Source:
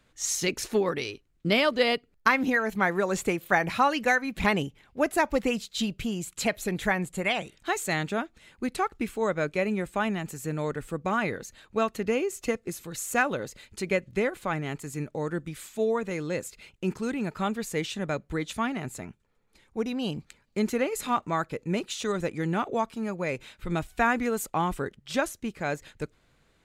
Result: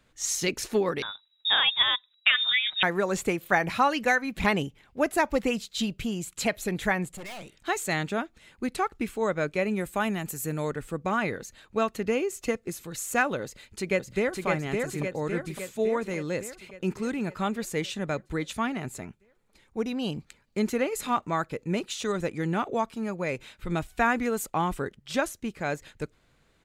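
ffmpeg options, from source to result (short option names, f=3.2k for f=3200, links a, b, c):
-filter_complex "[0:a]asettb=1/sr,asplit=3[a][b][c];[a]atrim=end=1.024[d];[b]atrim=start=1.02:end=2.83,asetpts=PTS-STARTPTS,afade=t=in:d=0.004:c=qsin,afade=t=out:st=1.806:d=0.004:c=qsin,lowpass=f=3.3k:t=q:w=0.5098,lowpass=f=3.3k:t=q:w=0.6013,lowpass=f=3.3k:t=q:w=0.9,lowpass=f=3.3k:t=q:w=2.563,afreqshift=-3900[e];[c]atrim=start=2.826[f];[d][e]acrossfade=d=0.004:c1=hsin:c2=qsin[g];[g][f]acrossfade=d=0.004:c1=qsin:c2=hsin,asettb=1/sr,asplit=3[h][i][j];[h]atrim=end=7.154[k];[i]atrim=start=7.15:end=7.55,asetpts=PTS-STARTPTS,afade=t=in:d=0.004:c=qsin,afade=t=out:st=0.396:d=0.004:c=qsin,aeval=exprs='(tanh(79.4*val(0)+0.4)-tanh(0.4))/79.4':c=same[l];[j]atrim=start=7.546[m];[k][l]acrossfade=d=0.004:c1=hsin:c2=qsin[n];[n][m]acrossfade=d=0.004:c1=qsin:c2=hsin,asettb=1/sr,asplit=3[o][p][q];[o]atrim=end=9.764[r];[p]atrim=start=9.76:end=10.7,asetpts=PTS-STARTPTS,afade=t=in:d=0.004:c=qsin,afade=t=out:st=0.936:d=0.004:c=qsin,equalizer=f=13k:t=o:w=0.98:g=12[s];[q]atrim=start=10.696[t];[r][s]acrossfade=d=0.004:c1=hsin:c2=qsin[u];[u][t]acrossfade=d=0.004:c1=qsin:c2=hsin,asplit=2[v][w];[w]afade=t=in:st=13.43:d=0.01,afade=t=out:st=14.46:d=0.01,aecho=0:1:560|1120|1680|2240|2800|3360|3920|4480|5040:0.707946|0.424767|0.25486|0.152916|0.0917498|0.0550499|0.0330299|0.019818|0.0118908[x];[v][x]amix=inputs=2:normalize=0"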